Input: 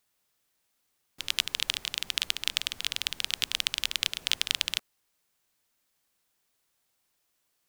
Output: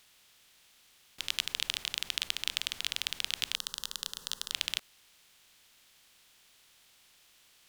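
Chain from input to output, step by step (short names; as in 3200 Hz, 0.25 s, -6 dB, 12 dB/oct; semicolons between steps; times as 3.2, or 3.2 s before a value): per-bin compression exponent 0.6; 3.55–4.52 fixed phaser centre 460 Hz, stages 8; gain -6 dB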